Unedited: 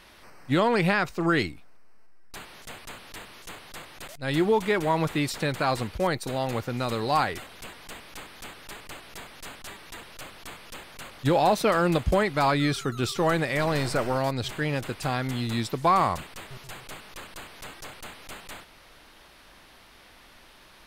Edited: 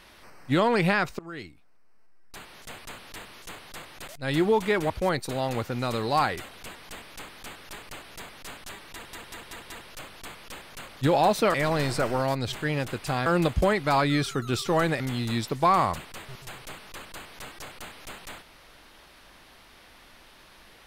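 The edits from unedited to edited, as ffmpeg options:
-filter_complex "[0:a]asplit=10[s0][s1][s2][s3][s4][s5][s6][s7][s8][s9];[s0]atrim=end=1.19,asetpts=PTS-STARTPTS,afade=t=out:st=1.186:d=0.004:c=hsin:silence=0.0749894[s10];[s1]atrim=start=1.19:end=4.902,asetpts=PTS-STARTPTS,afade=t=in:d=1.58:silence=0.0749894[s11];[s2]atrim=start=5.878:end=10.112[s12];[s3]atrim=start=9.918:end=10.112[s13];[s4]atrim=start=9.918:end=10.112[s14];[s5]atrim=start=9.918:end=10.112[s15];[s6]atrim=start=9.918:end=11.762[s16];[s7]atrim=start=13.498:end=15.222[s17];[s8]atrim=start=11.758:end=13.502[s18];[s9]atrim=start=15.218[s19];[s10][s11]concat=n=2:v=0:a=1[s20];[s20][s12]acrossfade=d=0.004:c1=hsin:c2=hsin[s21];[s21][s13]acrossfade=d=0.004:c1=hsin:c2=hsin[s22];[s22][s14]acrossfade=d=0.004:c1=hsin:c2=hsin[s23];[s23][s15]acrossfade=d=0.004:c1=hsin:c2=hsin[s24];[s24][s16]acrossfade=d=0.004:c1=hsin:c2=hsin[s25];[s25][s17]acrossfade=d=0.004:c1=hsin:c2=hsin[s26];[s26][s18]acrossfade=d=0.004:c1=hsin:c2=hsin[s27];[s27][s19]acrossfade=d=0.004:c1=hsin:c2=hsin"

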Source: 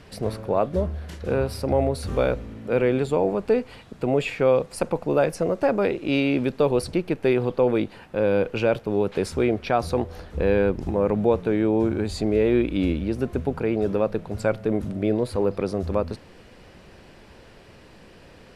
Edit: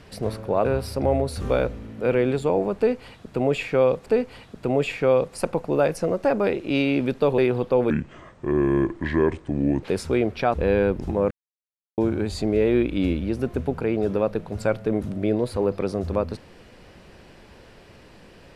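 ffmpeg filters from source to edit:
-filter_complex "[0:a]asplit=9[s0][s1][s2][s3][s4][s5][s6][s7][s8];[s0]atrim=end=0.652[s9];[s1]atrim=start=1.318:end=4.732[s10];[s2]atrim=start=3.438:end=6.762[s11];[s3]atrim=start=7.248:end=7.774[s12];[s4]atrim=start=7.77:end=9.1,asetpts=PTS-STARTPTS,asetrate=30429,aresample=44100,atrim=end_sample=85004,asetpts=PTS-STARTPTS[s13];[s5]atrim=start=9.096:end=9.812[s14];[s6]atrim=start=10.328:end=11.1,asetpts=PTS-STARTPTS,afade=t=out:st=0.768:d=0.004:c=hsin[s15];[s7]atrim=start=11.1:end=11.77,asetpts=PTS-STARTPTS,volume=0[s16];[s8]atrim=start=11.77,asetpts=PTS-STARTPTS,afade=t=in:d=0.004:c=hsin[s17];[s9][s10]acrossfade=d=0.004:c1=hsin:c2=hsin[s18];[s18][s11]acrossfade=d=0.004:c1=hsin:c2=hsin[s19];[s19][s12]acrossfade=d=0.004:c1=hsin:c2=hsin[s20];[s20][s13]acrossfade=d=0.004:c1=hsin:c2=hsin[s21];[s21][s14]acrossfade=d=0.004:c1=hsin:c2=hsin[s22];[s15][s16][s17]concat=n=3:v=0:a=1[s23];[s22][s23]acrossfade=d=0.004:c1=hsin:c2=hsin"

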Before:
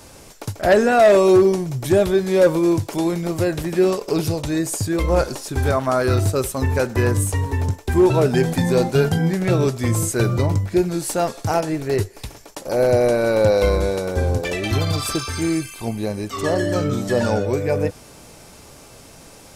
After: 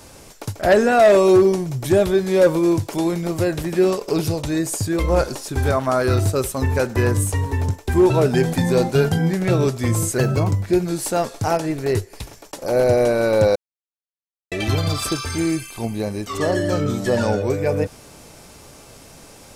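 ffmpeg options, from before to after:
-filter_complex "[0:a]asplit=5[s0][s1][s2][s3][s4];[s0]atrim=end=10.184[s5];[s1]atrim=start=10.18:end=10.52,asetpts=PTS-STARTPTS,asetrate=48951,aresample=44100,atrim=end_sample=13508,asetpts=PTS-STARTPTS[s6];[s2]atrim=start=10.516:end=13.59,asetpts=PTS-STARTPTS,afade=t=out:st=3.07:d=0.004:c=hsin[s7];[s3]atrim=start=13.59:end=14.55,asetpts=PTS-STARTPTS,volume=0[s8];[s4]atrim=start=14.55,asetpts=PTS-STARTPTS,afade=t=in:d=0.004:c=hsin[s9];[s5][s6]acrossfade=d=0.004:c1=hsin:c2=hsin[s10];[s7][s8][s9]concat=n=3:v=0:a=1[s11];[s10][s11]acrossfade=d=0.004:c1=hsin:c2=hsin"

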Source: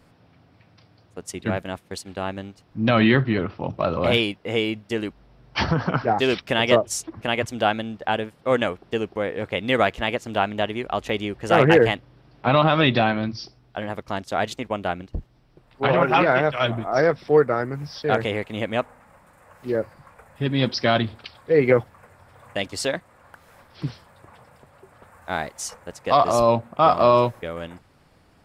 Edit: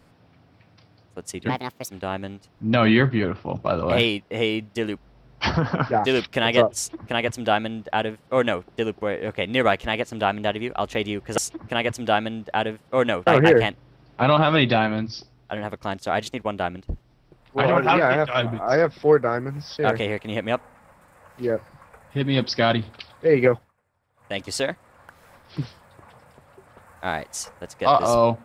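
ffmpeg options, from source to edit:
-filter_complex "[0:a]asplit=7[s0][s1][s2][s3][s4][s5][s6];[s0]atrim=end=1.494[s7];[s1]atrim=start=1.49:end=2.05,asetpts=PTS-STARTPTS,asetrate=59094,aresample=44100[s8];[s2]atrim=start=2.046:end=11.522[s9];[s3]atrim=start=6.908:end=8.802[s10];[s4]atrim=start=11.518:end=21.98,asetpts=PTS-STARTPTS,afade=t=out:st=10.192:d=0.27:silence=0.0841395[s11];[s5]atrim=start=21.98:end=22.4,asetpts=PTS-STARTPTS,volume=0.0841[s12];[s6]atrim=start=22.4,asetpts=PTS-STARTPTS,afade=t=in:d=0.27:silence=0.0841395[s13];[s7][s8]acrossfade=d=0.004:c1=hsin:c2=hsin[s14];[s14][s9]acrossfade=d=0.004:c1=hsin:c2=hsin[s15];[s15][s10]acrossfade=d=0.004:c1=hsin:c2=hsin[s16];[s11][s12][s13]concat=n=3:v=0:a=1[s17];[s16][s17]acrossfade=d=0.004:c1=hsin:c2=hsin"

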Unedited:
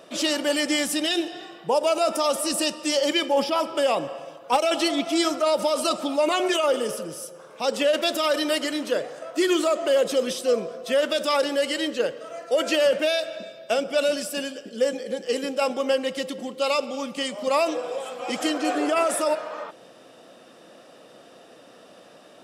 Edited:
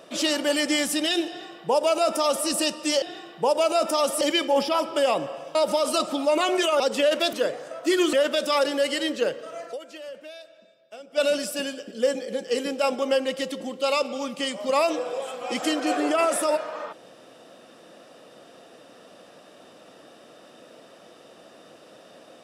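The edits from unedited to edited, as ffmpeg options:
-filter_complex "[0:a]asplit=9[s0][s1][s2][s3][s4][s5][s6][s7][s8];[s0]atrim=end=3.022[s9];[s1]atrim=start=1.278:end=2.472[s10];[s2]atrim=start=3.018:end=4.362[s11];[s3]atrim=start=5.458:end=6.712[s12];[s4]atrim=start=7.618:end=8.152[s13];[s5]atrim=start=8.838:end=9.642[s14];[s6]atrim=start=10.908:end=12.71,asetpts=PTS-STARTPTS,afade=t=out:st=1.592:d=0.21:c=exp:silence=0.112202[s15];[s7]atrim=start=12.71:end=13.75,asetpts=PTS-STARTPTS,volume=0.112[s16];[s8]atrim=start=13.75,asetpts=PTS-STARTPTS,afade=t=in:d=0.21:c=exp:silence=0.112202[s17];[s9][s10]acrossfade=d=0.004:c1=hsin:c2=hsin[s18];[s18][s11]acrossfade=d=0.004:c1=hsin:c2=hsin[s19];[s19][s12]acrossfade=d=0.004:c1=hsin:c2=hsin[s20];[s20][s13]acrossfade=d=0.004:c1=hsin:c2=hsin[s21];[s21][s14]acrossfade=d=0.004:c1=hsin:c2=hsin[s22];[s15][s16][s17]concat=n=3:v=0:a=1[s23];[s22][s23]acrossfade=d=0.004:c1=hsin:c2=hsin"

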